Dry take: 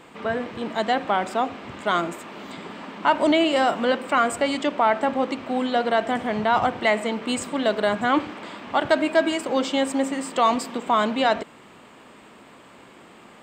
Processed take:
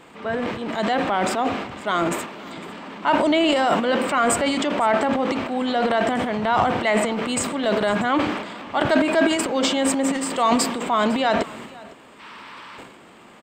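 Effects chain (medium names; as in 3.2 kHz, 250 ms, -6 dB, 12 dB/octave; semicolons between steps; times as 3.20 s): time-frequency box 12.20–12.78 s, 820–6100 Hz +11 dB; transient shaper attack -2 dB, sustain +11 dB; delay 505 ms -22 dB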